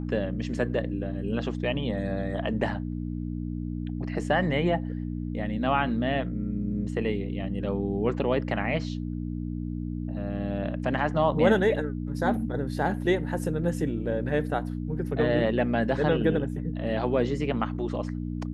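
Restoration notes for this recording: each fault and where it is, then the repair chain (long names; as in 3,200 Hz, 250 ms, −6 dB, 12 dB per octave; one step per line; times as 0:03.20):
mains hum 60 Hz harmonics 5 −32 dBFS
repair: hum removal 60 Hz, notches 5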